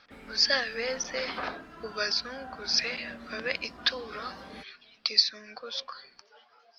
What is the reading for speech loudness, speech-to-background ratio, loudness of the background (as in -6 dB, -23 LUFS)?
-29.0 LUFS, 17.5 dB, -46.5 LUFS